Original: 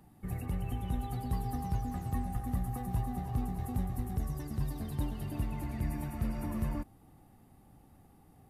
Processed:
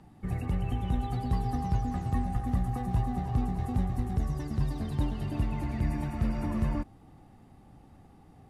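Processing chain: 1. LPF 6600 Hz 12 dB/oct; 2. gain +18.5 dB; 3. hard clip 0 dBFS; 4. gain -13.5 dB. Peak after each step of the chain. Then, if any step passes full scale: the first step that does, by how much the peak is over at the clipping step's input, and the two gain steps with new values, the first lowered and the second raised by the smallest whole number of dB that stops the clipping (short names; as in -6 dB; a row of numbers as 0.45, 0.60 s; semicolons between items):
-21.0, -2.5, -2.5, -16.0 dBFS; no overload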